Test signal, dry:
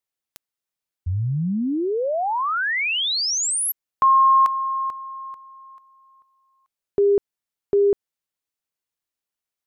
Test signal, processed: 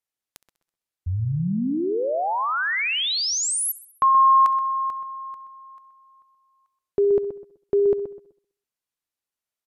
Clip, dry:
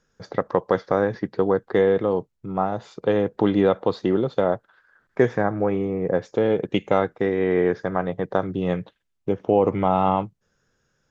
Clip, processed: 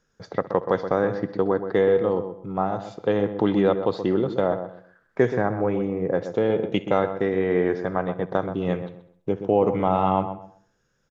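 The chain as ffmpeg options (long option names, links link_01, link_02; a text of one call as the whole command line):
ffmpeg -i in.wav -filter_complex "[0:a]asplit=2[link_01][link_02];[link_02]aecho=0:1:66|132|198|264|330:0.106|0.0614|0.0356|0.0207|0.012[link_03];[link_01][link_03]amix=inputs=2:normalize=0,aresample=32000,aresample=44100,asplit=2[link_04][link_05];[link_05]adelay=126,lowpass=frequency=1500:poles=1,volume=-9dB,asplit=2[link_06][link_07];[link_07]adelay=126,lowpass=frequency=1500:poles=1,volume=0.26,asplit=2[link_08][link_09];[link_09]adelay=126,lowpass=frequency=1500:poles=1,volume=0.26[link_10];[link_06][link_08][link_10]amix=inputs=3:normalize=0[link_11];[link_04][link_11]amix=inputs=2:normalize=0,volume=-1.5dB" out.wav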